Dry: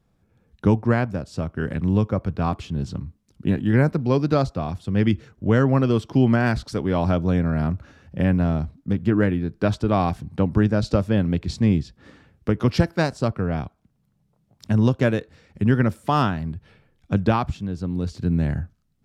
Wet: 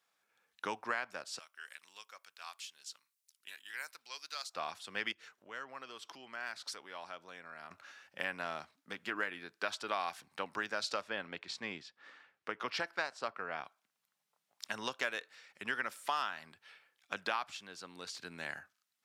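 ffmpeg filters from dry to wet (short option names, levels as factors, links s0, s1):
-filter_complex "[0:a]asettb=1/sr,asplit=3[s0][s1][s2];[s0]atrim=end=1.394[s3];[s1]atrim=start=1.39:end=4.54,asetpts=PTS-STARTPTS,afade=t=in:d=0.004:c=qsin,afade=t=out:st=3.146:d=0.004:c=qsin,aderivative[s4];[s2]atrim=start=4.536[s5];[s3][s4]acrossfade=d=0.004:c1=hsin:c2=qsin[s6];[s6][s5]acrossfade=d=0.004:c1=qsin:c2=hsin,asettb=1/sr,asplit=3[s7][s8][s9];[s7]atrim=end=5.124[s10];[s8]atrim=start=5.12:end=7.71,asetpts=PTS-STARTPTS,afade=t=in:d=0.004:c=qsin,afade=t=out:st=2.586:d=0.004:c=qsin,acompressor=threshold=0.01:ratio=2:attack=3.2:release=140:knee=1:detection=peak[s11];[s9]atrim=start=7.706[s12];[s10][s11]acrossfade=d=0.004:c1=hsin:c2=qsin[s13];[s13][s12]acrossfade=d=0.004:c1=qsin:c2=hsin,asettb=1/sr,asplit=3[s14][s15][s16];[s14]atrim=end=11.014[s17];[s15]atrim=start=11.01:end=13.65,asetpts=PTS-STARTPTS,afade=t=in:d=0.004:c=qsin,afade=t=out:st=2.636:d=0.004:c=qsin,aemphasis=mode=reproduction:type=75kf[s18];[s16]atrim=start=13.646[s19];[s17][s18]acrossfade=d=0.004:c1=hsin:c2=qsin[s20];[s20][s19]acrossfade=d=0.004:c1=qsin:c2=hsin,highpass=1300,acompressor=threshold=0.0224:ratio=4,volume=1.12"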